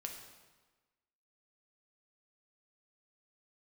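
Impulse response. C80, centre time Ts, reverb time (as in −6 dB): 7.0 dB, 37 ms, 1.3 s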